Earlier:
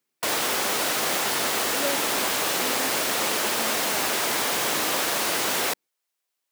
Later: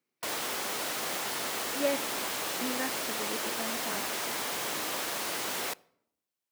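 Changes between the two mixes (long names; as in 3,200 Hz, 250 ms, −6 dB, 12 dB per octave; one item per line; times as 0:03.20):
background −9.5 dB
reverb: on, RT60 0.75 s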